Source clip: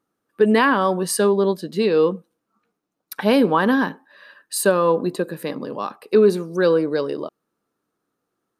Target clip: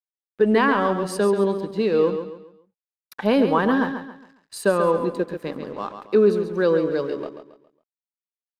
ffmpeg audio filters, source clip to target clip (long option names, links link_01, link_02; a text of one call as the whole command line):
ffmpeg -i in.wav -af "aeval=exprs='sgn(val(0))*max(abs(val(0))-0.0075,0)':channel_layout=same,aemphasis=mode=reproduction:type=50kf,aecho=1:1:137|274|411|548:0.376|0.132|0.046|0.0161,volume=-2dB" out.wav